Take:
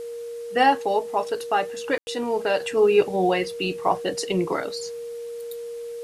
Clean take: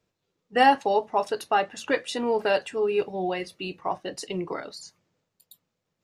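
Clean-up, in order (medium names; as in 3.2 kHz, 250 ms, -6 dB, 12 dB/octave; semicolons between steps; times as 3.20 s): band-stop 470 Hz, Q 30; room tone fill 1.98–2.07 s; expander -26 dBFS, range -21 dB; trim 0 dB, from 2.60 s -7 dB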